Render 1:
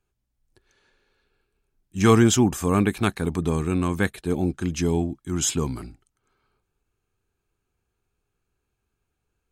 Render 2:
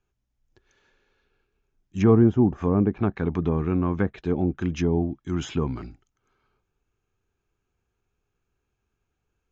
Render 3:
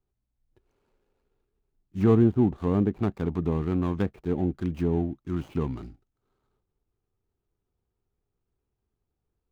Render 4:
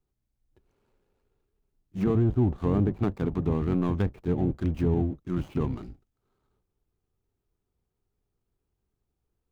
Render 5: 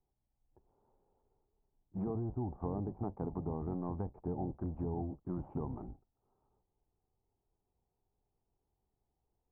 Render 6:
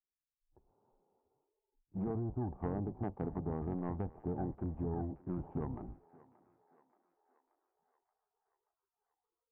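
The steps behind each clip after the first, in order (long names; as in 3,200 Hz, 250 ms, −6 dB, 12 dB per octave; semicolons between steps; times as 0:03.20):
Butterworth low-pass 7,100 Hz 96 dB per octave; parametric band 4,300 Hz −6 dB 0.3 octaves; treble cut that deepens with the level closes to 700 Hz, closed at −17 dBFS
running median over 25 samples; level −2.5 dB
sub-octave generator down 1 octave, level −4 dB; brickwall limiter −16 dBFS, peak gain reduction 7 dB
downward compressor 6 to 1, threshold −31 dBFS, peak gain reduction 11.5 dB; transistor ladder low-pass 950 Hz, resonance 60%; level +6 dB
stylus tracing distortion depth 0.14 ms; feedback echo with a high-pass in the loop 579 ms, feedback 69%, high-pass 550 Hz, level −17 dB; noise reduction from a noise print of the clip's start 27 dB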